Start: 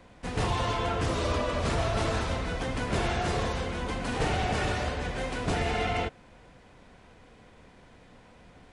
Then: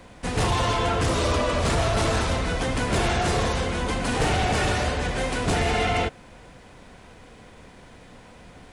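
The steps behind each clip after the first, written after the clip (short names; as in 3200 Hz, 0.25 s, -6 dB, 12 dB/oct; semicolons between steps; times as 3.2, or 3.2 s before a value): high shelf 8000 Hz +9 dB; in parallel at -8.5 dB: sine folder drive 6 dB, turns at -16.5 dBFS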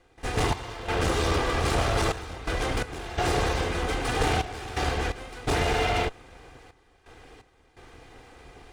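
minimum comb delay 2.5 ms; high shelf 5500 Hz -4.5 dB; step gate ".xx..xxxxxxx." 85 bpm -12 dB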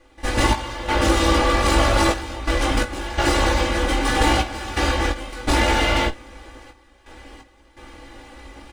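comb 3.5 ms, depth 99%; on a send: early reflections 18 ms -5.5 dB, 51 ms -16.5 dB; on the sum: gain +3.5 dB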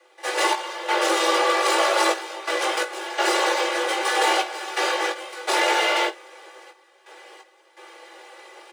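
steep high-pass 350 Hz 96 dB/oct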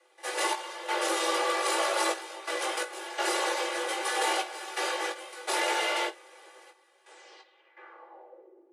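low-pass sweep 11000 Hz -> 310 Hz, 7.02–8.59; gain -8 dB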